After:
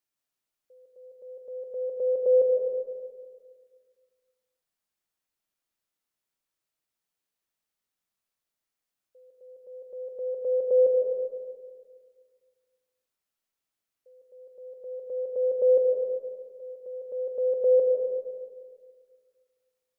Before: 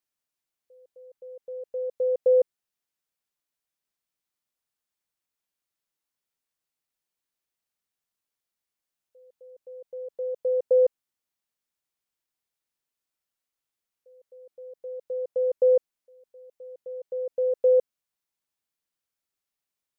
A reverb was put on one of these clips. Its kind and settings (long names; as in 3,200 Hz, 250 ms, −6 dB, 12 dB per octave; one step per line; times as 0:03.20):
comb and all-pass reverb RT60 1.8 s, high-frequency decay 0.35×, pre-delay 110 ms, DRR 2 dB
level −1 dB